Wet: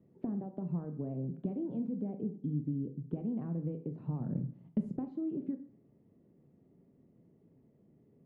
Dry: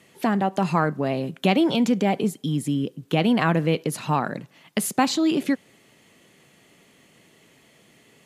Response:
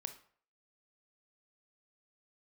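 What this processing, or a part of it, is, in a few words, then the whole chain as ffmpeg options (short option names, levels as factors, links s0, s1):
television next door: -filter_complex "[0:a]acompressor=threshold=0.0447:ratio=6,lowpass=310[s0];[1:a]atrim=start_sample=2205[s1];[s0][s1]afir=irnorm=-1:irlink=0,asettb=1/sr,asplit=3[s2][s3][s4];[s2]atrim=end=4.204[s5];[s3]atrim=start=4.2:end=4.97,asetpts=PTS-STARTPTS,afade=t=in:d=0.004:c=qsin,afade=t=out:st=0.766:d=0.004:c=qsin,bass=f=250:g=10,treble=f=4000:g=15[s6];[s4]atrim=start=4.966[s7];[s5][s6]acrossfade=d=0.004:c1=hsin:c2=qsin[s8];[s8][s7]acrossfade=d=0.004:c1=qsin:c2=hsin"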